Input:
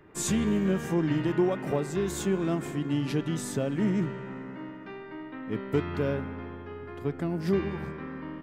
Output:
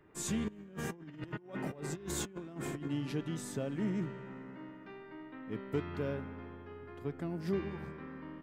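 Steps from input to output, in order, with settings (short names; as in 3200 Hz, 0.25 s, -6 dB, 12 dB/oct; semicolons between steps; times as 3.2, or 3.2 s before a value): 0.48–2.88 negative-ratio compressor -33 dBFS, ratio -0.5; gain -8 dB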